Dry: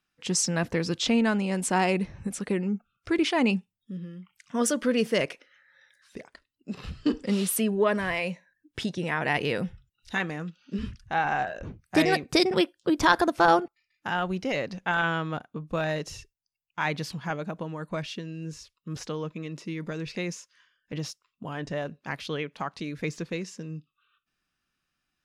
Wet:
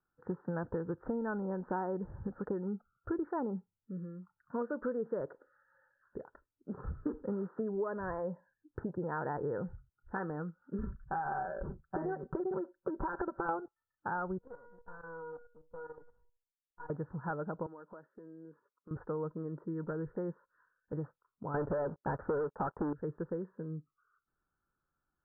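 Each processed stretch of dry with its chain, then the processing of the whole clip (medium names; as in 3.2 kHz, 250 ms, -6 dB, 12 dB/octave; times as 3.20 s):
10.78–13.49 s: comb 5.2 ms, depth 68% + compression, threshold -24 dBFS
14.38–16.90 s: comb filter that takes the minimum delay 4.1 ms + feedback comb 480 Hz, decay 0.36 s, mix 90% + level held to a coarse grid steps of 11 dB
17.66–18.91 s: high-pass 220 Hz 24 dB/octave + compression 4:1, threshold -46 dBFS
21.54–22.93 s: dynamic bell 580 Hz, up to +7 dB, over -46 dBFS, Q 1 + waveshaping leveller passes 5 + upward expansion, over -29 dBFS
whole clip: steep low-pass 1.6 kHz 96 dB/octave; comb 2.2 ms, depth 37%; compression 6:1, threshold -30 dBFS; trim -2.5 dB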